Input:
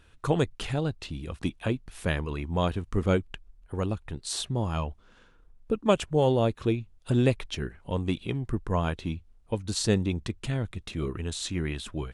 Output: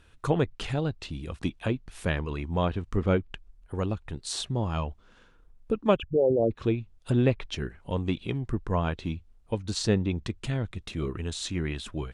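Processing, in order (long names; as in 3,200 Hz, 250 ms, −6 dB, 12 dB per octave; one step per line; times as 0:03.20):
0:05.96–0:06.51: spectral envelope exaggerated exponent 3
treble cut that deepens with the level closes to 2,900 Hz, closed at −20.5 dBFS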